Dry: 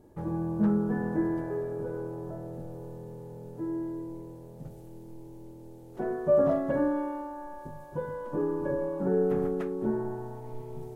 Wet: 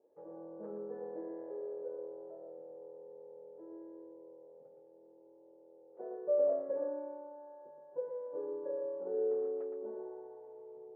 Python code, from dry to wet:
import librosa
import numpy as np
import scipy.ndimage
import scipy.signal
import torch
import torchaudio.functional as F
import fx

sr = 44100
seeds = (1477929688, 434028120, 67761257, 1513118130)

y = fx.ladder_bandpass(x, sr, hz=540.0, resonance_pct=70)
y = y + 10.0 ** (-6.0 / 20.0) * np.pad(y, (int(116 * sr / 1000.0), 0))[:len(y)]
y = F.gain(torch.from_numpy(y), -3.5).numpy()